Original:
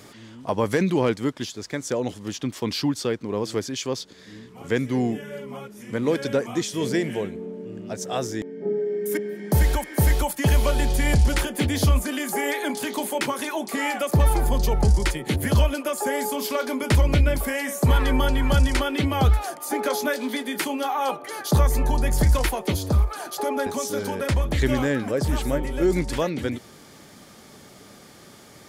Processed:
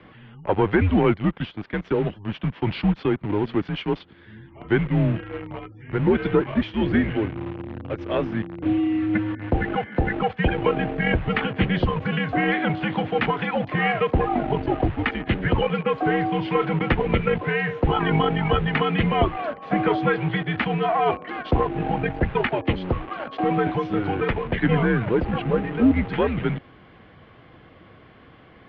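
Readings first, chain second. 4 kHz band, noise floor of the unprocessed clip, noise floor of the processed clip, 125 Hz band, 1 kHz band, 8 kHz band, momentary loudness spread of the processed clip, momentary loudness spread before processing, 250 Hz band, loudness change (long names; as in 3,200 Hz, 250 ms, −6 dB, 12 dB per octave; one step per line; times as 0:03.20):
−2.5 dB, −48 dBFS, −50 dBFS, −1.0 dB, +3.5 dB, below −40 dB, 8 LU, 10 LU, +3.5 dB, +0.5 dB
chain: gate on every frequency bin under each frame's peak −30 dB strong
harmonic generator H 4 −20 dB, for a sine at −8.5 dBFS
in parallel at −5 dB: bit reduction 5 bits
on the sum: single-sideband voice off tune −100 Hz 160–3,100 Hz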